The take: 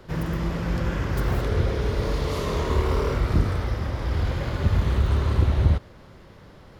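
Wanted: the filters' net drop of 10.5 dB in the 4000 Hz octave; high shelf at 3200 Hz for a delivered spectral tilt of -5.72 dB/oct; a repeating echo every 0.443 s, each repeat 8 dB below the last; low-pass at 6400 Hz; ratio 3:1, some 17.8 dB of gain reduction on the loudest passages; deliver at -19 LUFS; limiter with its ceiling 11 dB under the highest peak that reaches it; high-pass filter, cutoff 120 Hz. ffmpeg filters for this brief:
-af "highpass=120,lowpass=6.4k,highshelf=f=3.2k:g=-8,equalizer=f=4k:t=o:g=-7.5,acompressor=threshold=-45dB:ratio=3,alimiter=level_in=15.5dB:limit=-24dB:level=0:latency=1,volume=-15.5dB,aecho=1:1:443|886|1329|1772|2215:0.398|0.159|0.0637|0.0255|0.0102,volume=29dB"

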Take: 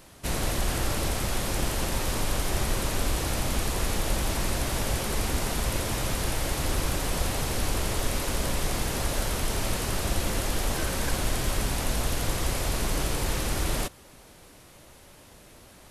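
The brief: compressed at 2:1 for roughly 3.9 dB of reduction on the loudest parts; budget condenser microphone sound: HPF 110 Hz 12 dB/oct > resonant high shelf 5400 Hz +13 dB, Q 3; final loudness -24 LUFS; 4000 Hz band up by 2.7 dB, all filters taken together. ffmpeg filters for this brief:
-af "equalizer=f=4k:t=o:g=4.5,acompressor=threshold=-28dB:ratio=2,highpass=110,highshelf=f=5.4k:t=q:w=3:g=13,volume=-4.5dB"

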